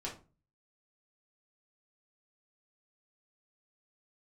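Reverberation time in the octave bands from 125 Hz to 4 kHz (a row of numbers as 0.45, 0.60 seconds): 0.60, 0.45, 0.35, 0.30, 0.25, 0.25 seconds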